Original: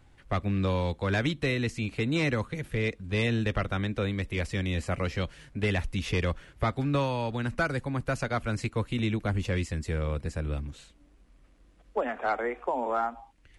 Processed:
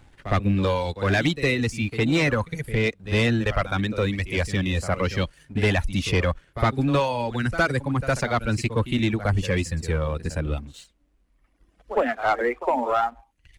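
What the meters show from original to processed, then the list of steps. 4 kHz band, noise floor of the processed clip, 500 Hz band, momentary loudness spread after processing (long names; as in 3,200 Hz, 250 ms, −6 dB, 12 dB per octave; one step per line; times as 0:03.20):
+6.5 dB, −65 dBFS, +6.0 dB, 6 LU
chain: reverb reduction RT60 1.8 s
echo ahead of the sound 60 ms −14 dB
leveller curve on the samples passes 1
level +5 dB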